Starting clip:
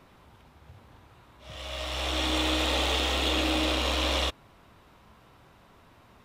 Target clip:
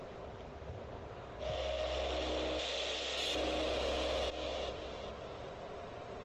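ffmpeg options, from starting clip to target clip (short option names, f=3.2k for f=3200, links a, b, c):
-filter_complex "[0:a]asettb=1/sr,asplit=3[a][b][c];[a]atrim=end=2.594[d];[b]atrim=start=2.59:end=3.35,asetpts=PTS-STARTPTS,afade=t=in:d=0.004:c=qsin,afade=t=out:st=0.756:d=0.004:c=qsin,tiltshelf=f=1.5k:g=-8[e];[c]atrim=start=3.346[f];[d][e]acrossfade=d=0.004:c1=hsin:c2=qsin[g];[g][f]acrossfade=d=0.004:c1=qsin:c2=hsin,acompressor=threshold=-49dB:ratio=1.5,superequalizer=7b=3.16:8b=3.16,aresample=16000,aresample=44100,asplit=2[h][i];[i]aecho=0:1:402|804|1206|1608:0.188|0.0753|0.0301|0.0121[j];[h][j]amix=inputs=2:normalize=0,aeval=exprs='(tanh(22.4*val(0)+0.3)-tanh(0.3))/22.4':c=same,alimiter=level_in=11dB:limit=-24dB:level=0:latency=1:release=134,volume=-11dB,volume=7dB" -ar 48000 -c:a libopus -b:a 20k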